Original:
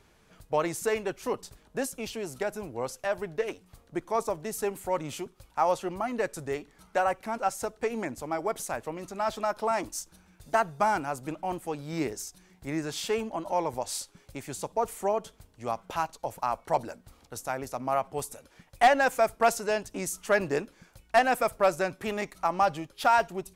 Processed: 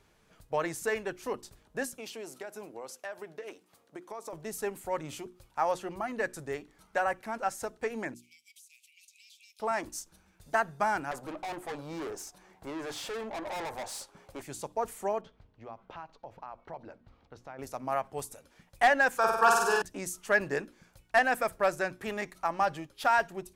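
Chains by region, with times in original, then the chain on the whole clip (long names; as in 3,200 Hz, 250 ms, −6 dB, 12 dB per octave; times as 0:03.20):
0:01.95–0:04.33: high-pass filter 260 Hz + downward compressor, threshold −33 dBFS
0:08.14–0:09.60: Butterworth high-pass 2,300 Hz 96 dB per octave + downward compressor 8 to 1, threshold −49 dBFS
0:11.11–0:14.42: parametric band 770 Hz +13.5 dB 2.4 octaves + tube saturation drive 31 dB, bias 0.3
0:15.21–0:17.59: downward compressor 2.5 to 1, threshold −38 dBFS + high-frequency loss of the air 250 metres
0:19.17–0:19.82: parametric band 1,900 Hz +10.5 dB 2.9 octaves + phaser with its sweep stopped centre 410 Hz, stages 8 + flutter between parallel walls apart 8.4 metres, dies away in 1 s
whole clip: dynamic equaliser 1,700 Hz, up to +8 dB, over −49 dBFS, Q 4.1; mains-hum notches 60/120/180/240/300/360 Hz; level −4 dB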